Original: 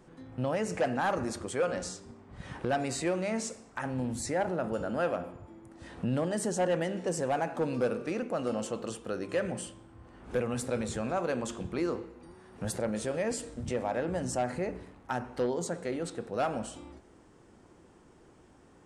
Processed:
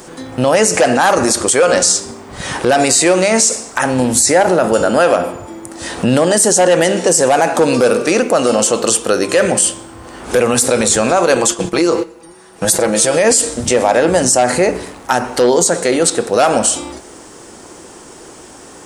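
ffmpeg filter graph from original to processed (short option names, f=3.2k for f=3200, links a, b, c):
-filter_complex "[0:a]asettb=1/sr,asplit=3[a][b][c];[a]atrim=end=11.354[d];[b]atrim=start=11.35:end=13.17,asetpts=PTS-STARTPTS,afade=t=in:d=0.004:c=qsin,afade=t=out:st=1.816:d=0.004:c=qsin,agate=range=-11dB:threshold=-41dB:ratio=16:release=100:detection=peak,aecho=1:1:6.1:0.54,atrim=end_sample=80262,acompressor=threshold=-31dB:ratio=3:attack=3.2:release=140:knee=1:detection=peak[e];[c]atrim=start=13.166[f];[d][e]acrossfade=d=0.004:c1=hsin:c2=qsin[g];[g][f]acrossfade=d=0.004:c1=qsin:c2=hsin,bass=f=250:g=-10,treble=f=4k:g=12,alimiter=level_in=24dB:limit=-1dB:release=50:level=0:latency=1,volume=-1dB"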